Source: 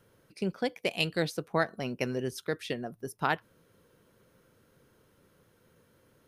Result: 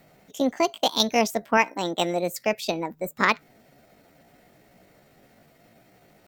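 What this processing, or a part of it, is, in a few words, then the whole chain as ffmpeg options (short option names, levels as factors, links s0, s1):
chipmunk voice: -filter_complex "[0:a]asetrate=60591,aresample=44100,atempo=0.727827,asettb=1/sr,asplit=3[s0][s1][s2];[s0]atrim=end=1.574[s3];[s1]atrim=start=1.57:end=2.38,asetpts=PTS-STARTPTS,afade=t=in:d=0.004:c=qsin,afade=t=out:st=0.806:d=0.004:c=qsin,highpass=f=210:p=1[s4];[s2]atrim=start=2.376[s5];[s3][s4]acrossfade=d=0.004:c1=hsin:c2=qsin[s6];[s6][s5]acrossfade=d=0.004:c1=qsin:c2=hsin,volume=2.51"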